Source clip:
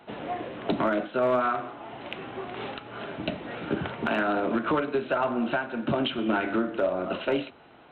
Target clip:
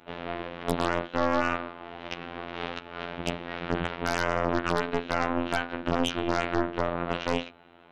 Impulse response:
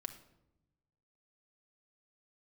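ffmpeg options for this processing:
-af "afftfilt=real='hypot(re,im)*cos(PI*b)':imag='0':win_size=2048:overlap=0.75,aeval=exprs='0.251*(cos(1*acos(clip(val(0)/0.251,-1,1)))-cos(1*PI/2))+0.0891*(cos(6*acos(clip(val(0)/0.251,-1,1)))-cos(6*PI/2))+0.0224*(cos(8*acos(clip(val(0)/0.251,-1,1)))-cos(8*PI/2))':channel_layout=same"

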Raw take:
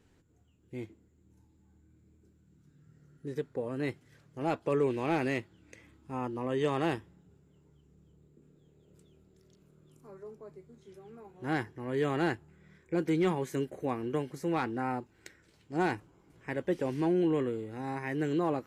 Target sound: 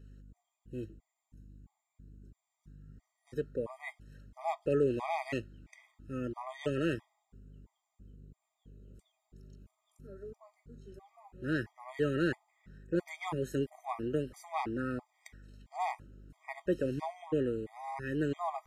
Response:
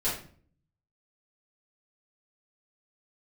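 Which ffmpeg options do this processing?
-af "aeval=exprs='val(0)+0.00251*(sin(2*PI*50*n/s)+sin(2*PI*2*50*n/s)/2+sin(2*PI*3*50*n/s)/3+sin(2*PI*4*50*n/s)/4+sin(2*PI*5*50*n/s)/5)':channel_layout=same,afftfilt=real='re*gt(sin(2*PI*1.5*pts/sr)*(1-2*mod(floor(b*sr/1024/630),2)),0)':imag='im*gt(sin(2*PI*1.5*pts/sr)*(1-2*mod(floor(b*sr/1024/630),2)),0)':win_size=1024:overlap=0.75"

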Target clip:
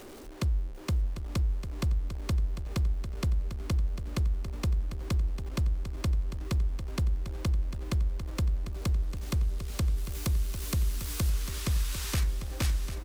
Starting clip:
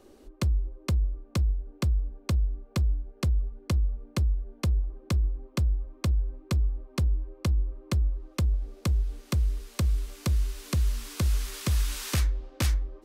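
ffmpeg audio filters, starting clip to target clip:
ffmpeg -i in.wav -filter_complex "[0:a]aeval=exprs='val(0)+0.5*0.0112*sgn(val(0))':channel_layout=same,asettb=1/sr,asplit=3[link_01][link_02][link_03];[link_01]atrim=end=9.974[link_04];[link_02]atrim=start=9.97:end=11.3,asetpts=PTS-STARTPTS,afade=type=in:duration=0.004:curve=qsin,afade=type=out:start_time=1.326:duration=0.004:curve=qsin,highshelf=frequency=10000:gain=9[link_05];[link_03]atrim=start=11.296[link_06];[link_04][link_05]acrossfade=duration=0.004:curve1=hsin:curve2=qsin[link_07];[link_07][link_06]acrossfade=duration=0.004:curve1=qsin:curve2=hsin,aecho=1:1:748|1496|2244|2992:0.299|0.125|0.0527|0.0221,volume=-3.5dB" out.wav

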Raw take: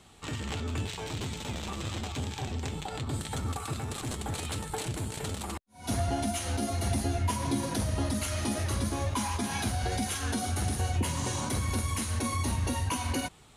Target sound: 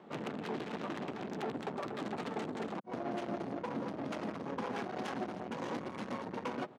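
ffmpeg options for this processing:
ffmpeg -i in.wav -filter_complex "[0:a]acrossover=split=1100[link_01][link_02];[link_02]adynamicsmooth=sensitivity=5:basefreq=1700[link_03];[link_01][link_03]amix=inputs=2:normalize=0,atempo=2,acompressor=threshold=-33dB:ratio=8,equalizer=frequency=5700:width_type=o:width=1.2:gain=5.5,asplit=3[link_04][link_05][link_06];[link_05]asetrate=22050,aresample=44100,atempo=2,volume=0dB[link_07];[link_06]asetrate=37084,aresample=44100,atempo=1.18921,volume=-5dB[link_08];[link_04][link_07][link_08]amix=inputs=3:normalize=0,highshelf=frequency=2700:gain=-10.5,asoftclip=type=tanh:threshold=-37.5dB,highpass=frequency=190:width=0.5412,highpass=frequency=190:width=1.3066,volume=6dB" out.wav

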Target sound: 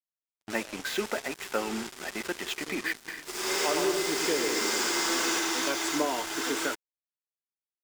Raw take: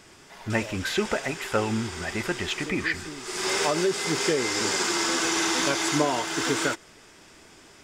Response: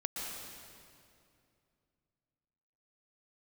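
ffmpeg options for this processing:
-filter_complex "[0:a]highpass=frequency=220:width=0.5412,highpass=frequency=220:width=1.3066,bandreject=frequency=426.7:width_type=h:width=4,bandreject=frequency=853.4:width_type=h:width=4,bandreject=frequency=1280.1:width_type=h:width=4,bandreject=frequency=1706.8:width_type=h:width=4,bandreject=frequency=2133.5:width_type=h:width=4,bandreject=frequency=2560.2:width_type=h:width=4,bandreject=frequency=2986.9:width_type=h:width=4,bandreject=frequency=3413.6:width_type=h:width=4,bandreject=frequency=3840.3:width_type=h:width=4,bandreject=frequency=4267:width_type=h:width=4,bandreject=frequency=4693.7:width_type=h:width=4,bandreject=frequency=5120.4:width_type=h:width=4,bandreject=frequency=5547.1:width_type=h:width=4,bandreject=frequency=5973.8:width_type=h:width=4,bandreject=frequency=6400.5:width_type=h:width=4,bandreject=frequency=6827.2:width_type=h:width=4,bandreject=frequency=7253.9:width_type=h:width=4,bandreject=frequency=7680.6:width_type=h:width=4,bandreject=frequency=8107.3:width_type=h:width=4,bandreject=frequency=8534:width_type=h:width=4,bandreject=frequency=8960.7:width_type=h:width=4,bandreject=frequency=9387.4:width_type=h:width=4,bandreject=frequency=9814.1:width_type=h:width=4,bandreject=frequency=10240.8:width_type=h:width=4,bandreject=frequency=10667.5:width_type=h:width=4,bandreject=frequency=11094.2:width_type=h:width=4,bandreject=frequency=11520.9:width_type=h:width=4,bandreject=frequency=11947.6:width_type=h:width=4,bandreject=frequency=12374.3:width_type=h:width=4,bandreject=frequency=12801:width_type=h:width=4,bandreject=frequency=13227.7:width_type=h:width=4,acrusher=bits=4:mix=0:aa=0.5,asplit=3[link_01][link_02][link_03];[link_01]afade=type=out:start_time=3.07:duration=0.02[link_04];[link_02]aecho=1:1:110|187|240.9|278.6|305:0.631|0.398|0.251|0.158|0.1,afade=type=in:start_time=3.07:duration=0.02,afade=type=out:start_time=5.38:duration=0.02[link_05];[link_03]afade=type=in:start_time=5.38:duration=0.02[link_06];[link_04][link_05][link_06]amix=inputs=3:normalize=0,volume=-4.5dB"

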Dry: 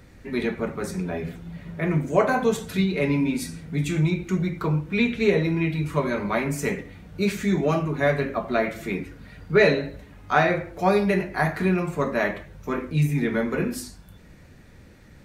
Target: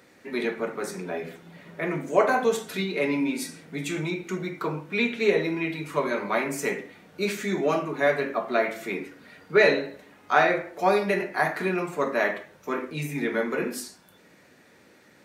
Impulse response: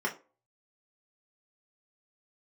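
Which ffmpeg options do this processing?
-filter_complex "[0:a]highpass=310,asplit=2[link_01][link_02];[1:a]atrim=start_sample=2205,adelay=45[link_03];[link_02][link_03]afir=irnorm=-1:irlink=0,volume=-20dB[link_04];[link_01][link_04]amix=inputs=2:normalize=0"

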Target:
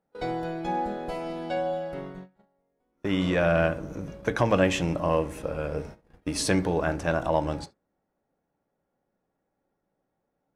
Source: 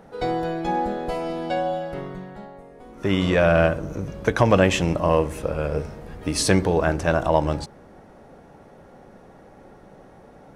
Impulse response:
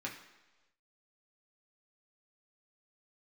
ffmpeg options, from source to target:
-filter_complex "[0:a]agate=range=-26dB:threshold=-34dB:ratio=16:detection=peak,asplit=2[link_01][link_02];[1:a]atrim=start_sample=2205,atrim=end_sample=3528[link_03];[link_02][link_03]afir=irnorm=-1:irlink=0,volume=-9.5dB[link_04];[link_01][link_04]amix=inputs=2:normalize=0,volume=-7dB"

